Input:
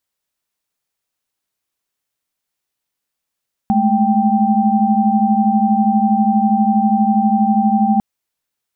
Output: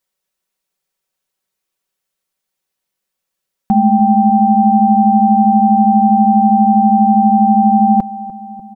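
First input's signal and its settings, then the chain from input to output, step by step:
held notes G#3/A3/G5 sine, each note −15.5 dBFS 4.30 s
parametric band 490 Hz +8.5 dB 0.21 octaves
comb filter 5.3 ms
feedback echo with a low-pass in the loop 297 ms, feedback 76%, low-pass 840 Hz, level −15.5 dB

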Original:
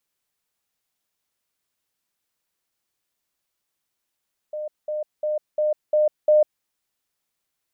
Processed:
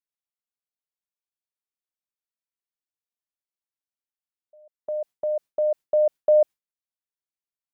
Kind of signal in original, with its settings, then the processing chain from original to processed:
level staircase 607 Hz −27 dBFS, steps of 3 dB, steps 6, 0.15 s 0.20 s
noise gate with hold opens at −26 dBFS

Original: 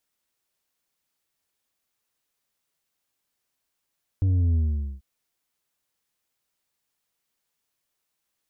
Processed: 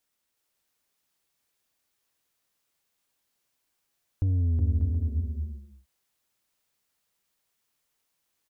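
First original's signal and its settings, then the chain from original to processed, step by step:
bass drop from 97 Hz, over 0.79 s, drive 5.5 dB, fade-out 0.46 s, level −19 dB
downward compressor, threshold −23 dBFS
on a send: bouncing-ball delay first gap 370 ms, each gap 0.6×, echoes 5

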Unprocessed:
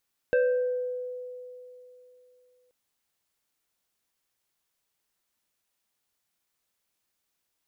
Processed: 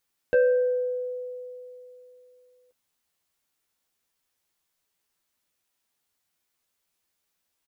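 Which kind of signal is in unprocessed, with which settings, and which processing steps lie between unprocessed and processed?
two-operator FM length 2.38 s, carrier 499 Hz, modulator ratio 2.14, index 0.73, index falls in 1.10 s exponential, decay 3.09 s, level −18.5 dB
double-tracking delay 12 ms −5 dB

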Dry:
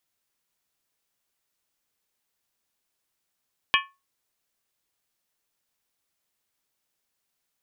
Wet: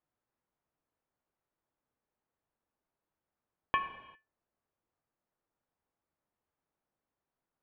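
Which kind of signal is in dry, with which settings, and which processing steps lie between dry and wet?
struck skin, lowest mode 1,100 Hz, modes 6, decay 0.26 s, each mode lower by 0 dB, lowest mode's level −19.5 dB
low-pass filter 1,100 Hz 12 dB per octave
reverb whose tail is shaped and stops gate 420 ms falling, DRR 8 dB

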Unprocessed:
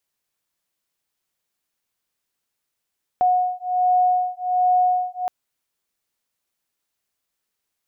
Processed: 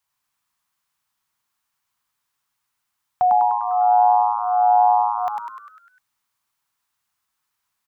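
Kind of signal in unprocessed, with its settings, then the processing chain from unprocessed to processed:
two tones that beat 728 Hz, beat 1.3 Hz, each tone −19.5 dBFS 2.07 s
octave-band graphic EQ 125/250/500/1,000 Hz +7/−11/−9/+11 dB
on a send: echo with shifted repeats 100 ms, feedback 54%, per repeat +110 Hz, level −4 dB

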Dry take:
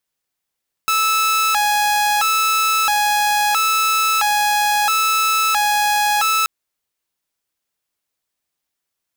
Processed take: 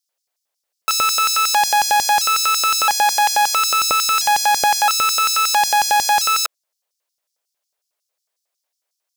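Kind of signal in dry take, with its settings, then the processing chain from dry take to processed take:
siren hi-lo 833–1,310 Hz 0.75 per second saw −12 dBFS 5.58 s
auto-filter high-pass square 5.5 Hz 570–5,200 Hz

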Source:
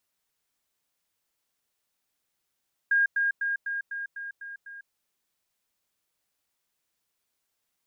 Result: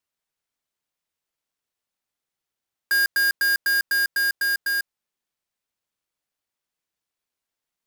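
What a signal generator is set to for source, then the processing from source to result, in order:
level staircase 1,620 Hz −19 dBFS, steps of −3 dB, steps 8, 0.15 s 0.10 s
each half-wave held at its own peak
leveller curve on the samples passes 5

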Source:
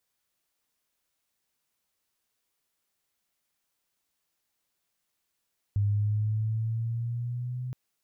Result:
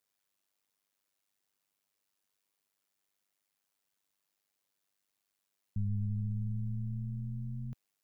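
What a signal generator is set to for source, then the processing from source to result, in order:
pitch glide with a swell sine, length 1.97 s, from 101 Hz, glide +4 semitones, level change −9.5 dB, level −22 dB
high-pass filter 100 Hz
amplitude modulation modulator 99 Hz, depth 75%

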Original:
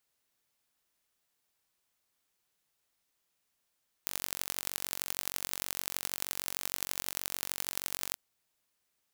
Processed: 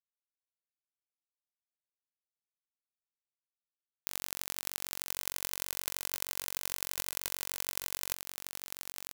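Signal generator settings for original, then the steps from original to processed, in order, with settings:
impulse train 46.4 per second, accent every 4, −4.5 dBFS 4.09 s
log-companded quantiser 4 bits
on a send: single-tap delay 1,036 ms −5 dB

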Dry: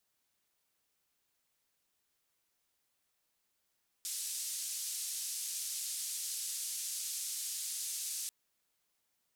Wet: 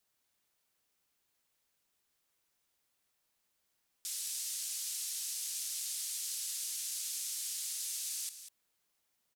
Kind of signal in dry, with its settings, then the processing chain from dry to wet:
band-limited noise 5,400–10,000 Hz, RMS −39.5 dBFS 4.24 s
on a send: single-tap delay 195 ms −11 dB

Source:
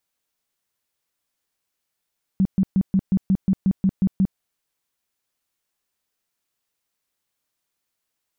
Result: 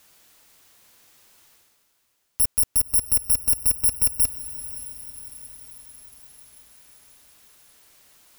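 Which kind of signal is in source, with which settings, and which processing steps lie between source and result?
tone bursts 191 Hz, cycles 10, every 0.18 s, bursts 11, −14 dBFS
samples in bit-reversed order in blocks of 256 samples
reversed playback
upward compression, threshold −36 dBFS
reversed playback
feedback delay with all-pass diffusion 555 ms, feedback 57%, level −14.5 dB

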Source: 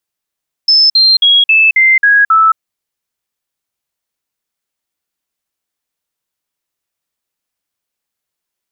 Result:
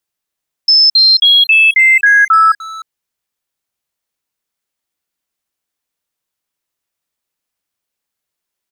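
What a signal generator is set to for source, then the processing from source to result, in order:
stepped sweep 5,250 Hz down, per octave 3, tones 7, 0.22 s, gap 0.05 s −4.5 dBFS
far-end echo of a speakerphone 300 ms, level −12 dB

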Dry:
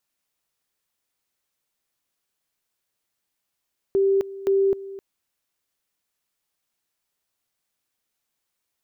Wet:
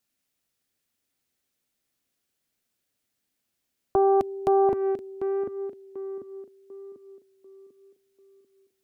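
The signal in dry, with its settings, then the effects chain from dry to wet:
tone at two levels in turn 391 Hz −16 dBFS, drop 17 dB, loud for 0.26 s, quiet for 0.26 s, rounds 2
graphic EQ with 15 bands 100 Hz +5 dB, 250 Hz +7 dB, 1,000 Hz −6 dB
on a send: tape delay 743 ms, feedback 46%, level −4.5 dB, low-pass 1,100 Hz
on the sum: highs frequency-modulated by the lows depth 0.72 ms

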